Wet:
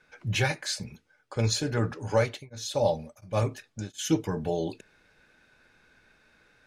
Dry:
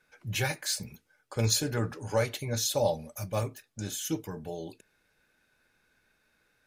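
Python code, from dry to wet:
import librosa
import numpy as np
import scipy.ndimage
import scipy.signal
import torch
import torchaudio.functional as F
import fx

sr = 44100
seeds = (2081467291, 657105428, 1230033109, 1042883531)

y = fx.rider(x, sr, range_db=5, speed_s=0.5)
y = fx.air_absorb(y, sr, metres=66.0)
y = fx.tremolo_abs(y, sr, hz=1.4, at=(1.93, 3.98), fade=0.02)
y = y * librosa.db_to_amplitude(4.5)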